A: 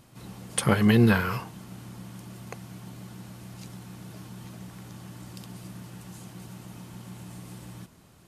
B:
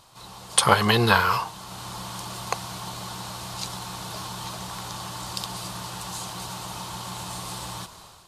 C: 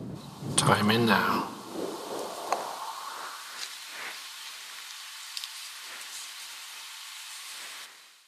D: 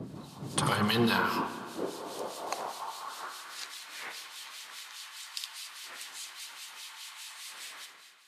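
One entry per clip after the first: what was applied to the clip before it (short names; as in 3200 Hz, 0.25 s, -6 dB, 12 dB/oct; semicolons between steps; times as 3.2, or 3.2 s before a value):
graphic EQ 125/250/1000/2000/4000/8000 Hz -5/-11/+11/-4/+10/+4 dB; AGC gain up to 9.5 dB
wind noise 290 Hz -28 dBFS; high-pass sweep 140 Hz -> 2000 Hz, 0.75–3.75; split-band echo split 520 Hz, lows 0.161 s, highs 82 ms, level -16 dB; gain -5.5 dB
harmonic tremolo 4.9 Hz, crossover 2100 Hz; spring tank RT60 1.9 s, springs 30/56 ms, chirp 65 ms, DRR 9.5 dB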